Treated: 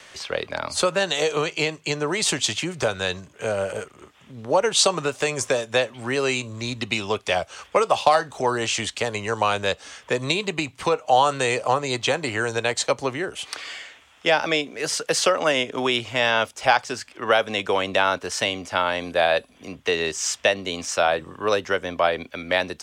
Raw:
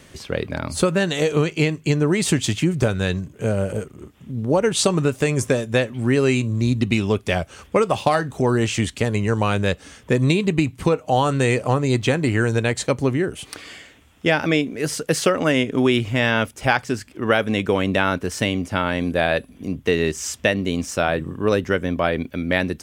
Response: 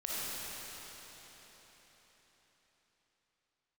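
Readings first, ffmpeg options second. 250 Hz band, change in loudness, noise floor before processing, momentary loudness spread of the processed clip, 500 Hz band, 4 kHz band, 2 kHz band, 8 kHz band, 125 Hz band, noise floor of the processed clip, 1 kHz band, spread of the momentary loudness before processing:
−10.5 dB, −2.0 dB, −49 dBFS, 9 LU, −2.0 dB, +3.5 dB, −0.5 dB, +2.0 dB, −13.5 dB, −54 dBFS, +2.5 dB, 7 LU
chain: -filter_complex "[0:a]acrossover=split=570 7900:gain=0.112 1 0.2[link_01][link_02][link_03];[link_01][link_02][link_03]amix=inputs=3:normalize=0,acrossover=split=200|1300|2700[link_04][link_05][link_06][link_07];[link_06]acompressor=threshold=-44dB:ratio=6[link_08];[link_04][link_05][link_08][link_07]amix=inputs=4:normalize=0,volume=5.5dB"

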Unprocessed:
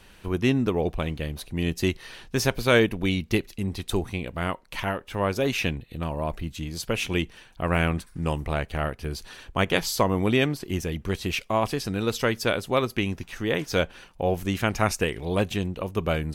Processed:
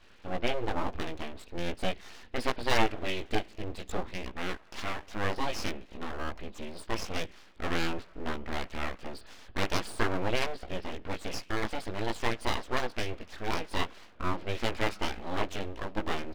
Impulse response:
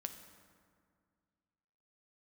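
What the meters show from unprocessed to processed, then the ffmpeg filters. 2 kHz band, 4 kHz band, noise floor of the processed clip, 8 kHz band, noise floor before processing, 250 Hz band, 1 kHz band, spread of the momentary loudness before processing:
−6.0 dB, −5.5 dB, −54 dBFS, −9.0 dB, −52 dBFS, −10.5 dB, −4.0 dB, 9 LU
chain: -filter_complex "[0:a]aemphasis=mode=reproduction:type=50fm,asplit=2[link_01][link_02];[1:a]atrim=start_sample=2205,lowshelf=frequency=450:gain=-9[link_03];[link_02][link_03]afir=irnorm=-1:irlink=0,volume=-9dB[link_04];[link_01][link_04]amix=inputs=2:normalize=0,flanger=delay=16:depth=2.8:speed=0.47,aresample=11025,aresample=44100,aeval=exprs='abs(val(0))':channel_layout=same,equalizer=frequency=140:width_type=o:width=0.36:gain=-14.5,volume=-1.5dB"

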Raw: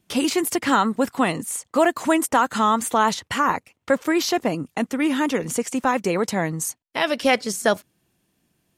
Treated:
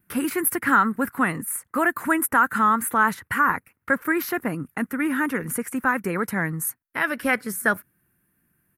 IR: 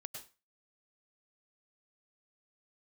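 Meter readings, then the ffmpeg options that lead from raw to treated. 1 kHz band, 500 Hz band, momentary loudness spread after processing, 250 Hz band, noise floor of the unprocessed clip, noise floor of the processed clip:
−1.0 dB, −7.0 dB, 9 LU, −3.0 dB, −71 dBFS, −73 dBFS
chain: -af "firequalizer=gain_entry='entry(130,0);entry(650,-10);entry(1500,7);entry(3200,-15);entry(6700,-15);entry(11000,7)':delay=0.05:min_phase=1"

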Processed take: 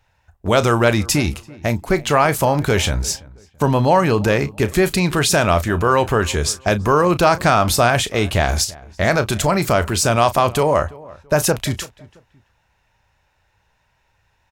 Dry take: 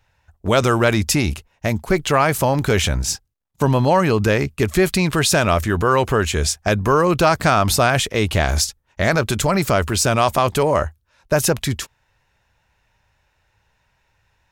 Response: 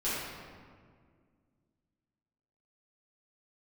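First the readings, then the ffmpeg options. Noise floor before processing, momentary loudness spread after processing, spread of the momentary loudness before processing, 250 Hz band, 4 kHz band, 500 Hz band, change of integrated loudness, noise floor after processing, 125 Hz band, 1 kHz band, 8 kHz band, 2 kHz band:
−66 dBFS, 8 LU, 7 LU, +0.5 dB, 0.0 dB, +1.0 dB, +1.0 dB, −64 dBFS, 0.0 dB, +1.5 dB, 0.0 dB, +0.5 dB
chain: -filter_complex "[0:a]equalizer=frequency=790:width_type=o:width=0.77:gain=2.5,asplit=2[link_01][link_02];[link_02]adelay=34,volume=-13.5dB[link_03];[link_01][link_03]amix=inputs=2:normalize=0,asplit=2[link_04][link_05];[link_05]adelay=335,lowpass=frequency=1700:poles=1,volume=-21dB,asplit=2[link_06][link_07];[link_07]adelay=335,lowpass=frequency=1700:poles=1,volume=0.31[link_08];[link_04][link_06][link_08]amix=inputs=3:normalize=0"

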